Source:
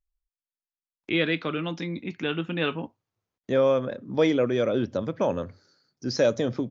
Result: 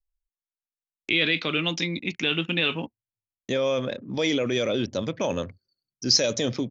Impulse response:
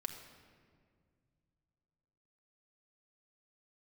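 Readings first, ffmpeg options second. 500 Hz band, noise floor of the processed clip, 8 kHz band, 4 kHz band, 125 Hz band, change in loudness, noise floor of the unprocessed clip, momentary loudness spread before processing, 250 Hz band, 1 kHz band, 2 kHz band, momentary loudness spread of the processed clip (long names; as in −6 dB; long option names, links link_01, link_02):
−3.0 dB, below −85 dBFS, can't be measured, +10.0 dB, 0.0 dB, +1.5 dB, below −85 dBFS, 11 LU, −1.0 dB, −2.0 dB, +5.0 dB, 11 LU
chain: -af "anlmdn=0.01,alimiter=limit=-19dB:level=0:latency=1:release=16,aexciter=amount=4.4:drive=3.3:freq=2100,volume=1.5dB"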